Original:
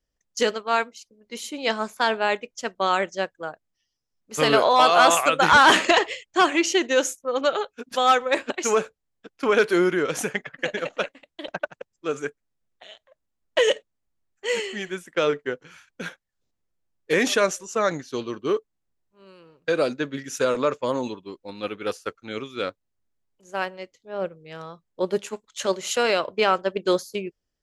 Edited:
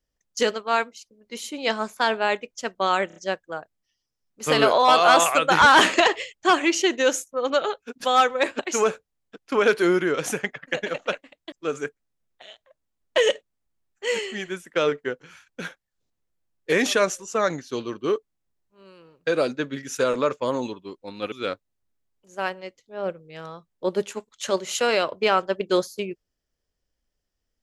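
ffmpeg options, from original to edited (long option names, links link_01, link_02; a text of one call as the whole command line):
ffmpeg -i in.wav -filter_complex "[0:a]asplit=6[link_01][link_02][link_03][link_04][link_05][link_06];[link_01]atrim=end=3.102[link_07];[link_02]atrim=start=3.068:end=3.102[link_08];[link_03]atrim=start=3.068:end=3.102[link_09];[link_04]atrim=start=3.068:end=11.432[link_10];[link_05]atrim=start=11.928:end=21.732[link_11];[link_06]atrim=start=22.478[link_12];[link_07][link_08]acrossfade=duration=0.004:curve1=hsin:curve2=hsin[link_13];[link_13][link_09]acrossfade=duration=0.004:curve1=hsin:curve2=hsin[link_14];[link_14][link_10]acrossfade=duration=0.004:curve1=hsin:curve2=hsin[link_15];[link_15][link_11]acrossfade=duration=0.004:curve1=hsin:curve2=hsin[link_16];[link_16][link_12]acrossfade=duration=0.004:curve1=hsin:curve2=hsin" out.wav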